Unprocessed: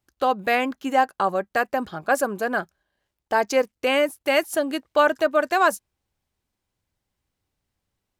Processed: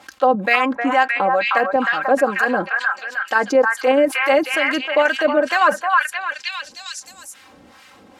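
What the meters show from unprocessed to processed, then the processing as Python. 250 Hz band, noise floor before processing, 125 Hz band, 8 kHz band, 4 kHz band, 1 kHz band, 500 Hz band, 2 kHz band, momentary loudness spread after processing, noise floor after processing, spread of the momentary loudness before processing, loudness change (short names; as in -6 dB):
+5.5 dB, -82 dBFS, n/a, +2.0 dB, +5.5 dB, +5.0 dB, +4.5 dB, +8.5 dB, 11 LU, -48 dBFS, 6 LU, +5.0 dB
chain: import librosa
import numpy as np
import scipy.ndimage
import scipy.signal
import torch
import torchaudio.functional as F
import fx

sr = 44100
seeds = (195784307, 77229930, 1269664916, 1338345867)

p1 = scipy.signal.sosfilt(scipy.signal.butter(2, 80.0, 'highpass', fs=sr, output='sos'), x)
p2 = fx.high_shelf(p1, sr, hz=2500.0, db=10.0)
p3 = p2 + fx.echo_stepped(p2, sr, ms=310, hz=1300.0, octaves=0.7, feedback_pct=70, wet_db=-1, dry=0)
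p4 = fx.filter_lfo_bandpass(p3, sr, shape='sine', hz=2.2, low_hz=380.0, high_hz=1900.0, q=0.97)
p5 = p4 + 0.67 * np.pad(p4, (int(3.8 * sr / 1000.0), 0))[:len(p4)]
p6 = fx.level_steps(p5, sr, step_db=18)
p7 = p5 + (p6 * 10.0 ** (-2.5 / 20.0))
p8 = fx.low_shelf(p7, sr, hz=410.0, db=6.5)
p9 = fx.env_flatten(p8, sr, amount_pct=50)
y = p9 * 10.0 ** (-4.5 / 20.0)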